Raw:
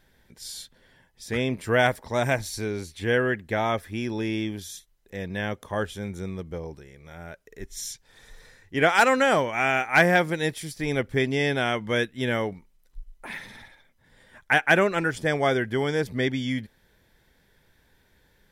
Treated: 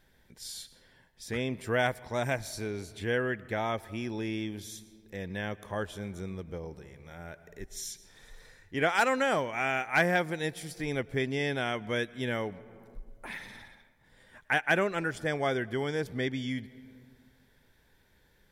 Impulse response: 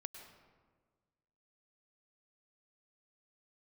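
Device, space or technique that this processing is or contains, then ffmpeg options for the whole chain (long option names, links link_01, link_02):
compressed reverb return: -filter_complex "[0:a]asplit=2[link_01][link_02];[1:a]atrim=start_sample=2205[link_03];[link_02][link_03]afir=irnorm=-1:irlink=0,acompressor=threshold=-39dB:ratio=10,volume=1dB[link_04];[link_01][link_04]amix=inputs=2:normalize=0,volume=-7.5dB"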